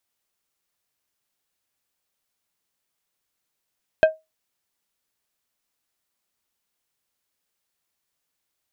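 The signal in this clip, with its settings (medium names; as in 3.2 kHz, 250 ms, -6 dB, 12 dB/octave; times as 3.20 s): glass hit plate, lowest mode 633 Hz, decay 0.20 s, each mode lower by 8 dB, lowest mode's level -7 dB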